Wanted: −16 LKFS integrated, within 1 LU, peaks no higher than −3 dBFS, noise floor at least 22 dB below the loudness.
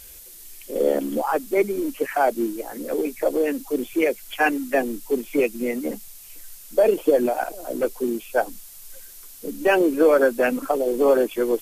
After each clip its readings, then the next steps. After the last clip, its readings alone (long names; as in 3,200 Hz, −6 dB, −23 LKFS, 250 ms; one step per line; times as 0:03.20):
background noise floor −44 dBFS; target noise floor −45 dBFS; integrated loudness −22.5 LKFS; sample peak −6.0 dBFS; target loudness −16.0 LKFS
→ noise reduction from a noise print 6 dB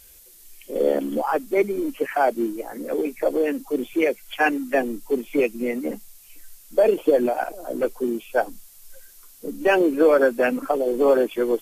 background noise floor −49 dBFS; integrated loudness −22.5 LKFS; sample peak −6.0 dBFS; target loudness −16.0 LKFS
→ level +6.5 dB
brickwall limiter −3 dBFS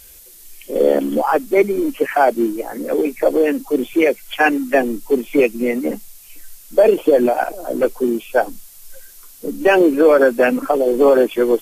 integrated loudness −16.5 LKFS; sample peak −3.0 dBFS; background noise floor −43 dBFS